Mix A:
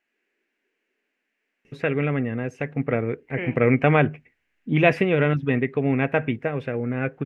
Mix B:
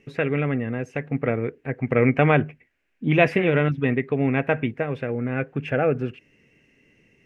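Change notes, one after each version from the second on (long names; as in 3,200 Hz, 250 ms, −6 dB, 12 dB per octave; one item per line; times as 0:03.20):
first voice: entry −1.65 s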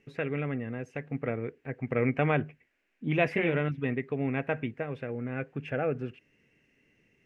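first voice −8.5 dB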